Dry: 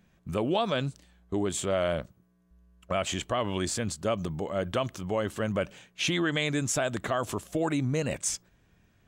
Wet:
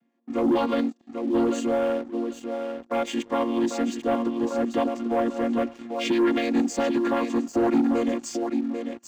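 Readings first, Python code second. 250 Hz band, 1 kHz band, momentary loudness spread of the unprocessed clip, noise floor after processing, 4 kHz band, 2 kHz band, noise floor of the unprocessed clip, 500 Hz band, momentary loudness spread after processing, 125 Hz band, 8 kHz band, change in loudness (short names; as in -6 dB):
+9.5 dB, +5.0 dB, 6 LU, -57 dBFS, -3.5 dB, -1.0 dB, -66 dBFS, +5.0 dB, 8 LU, -11.0 dB, -6.5 dB, +4.5 dB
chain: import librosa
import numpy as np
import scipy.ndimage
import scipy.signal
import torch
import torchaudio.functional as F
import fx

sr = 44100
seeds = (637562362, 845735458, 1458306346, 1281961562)

y = fx.chord_vocoder(x, sr, chord='minor triad', root=58)
y = fx.echo_feedback(y, sr, ms=793, feedback_pct=18, wet_db=-8.0)
y = fx.leveller(y, sr, passes=2)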